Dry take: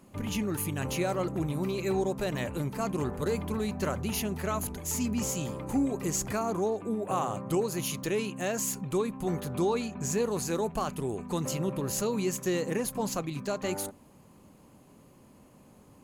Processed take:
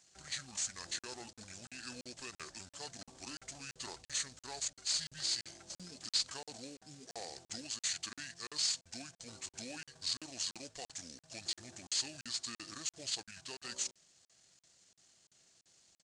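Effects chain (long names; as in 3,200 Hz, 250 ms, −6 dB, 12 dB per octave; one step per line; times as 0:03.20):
variable-slope delta modulation 64 kbit/s
first-order pre-emphasis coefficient 0.97
pitch shifter −7.5 semitones
regular buffer underruns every 0.34 s, samples 2,048, zero, from 0:00.99
level +1 dB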